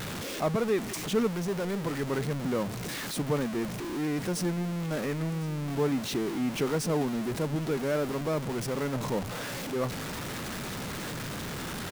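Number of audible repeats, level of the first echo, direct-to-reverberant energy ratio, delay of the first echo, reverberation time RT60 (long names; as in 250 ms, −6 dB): 1, −20.0 dB, no reverb audible, 1,054 ms, no reverb audible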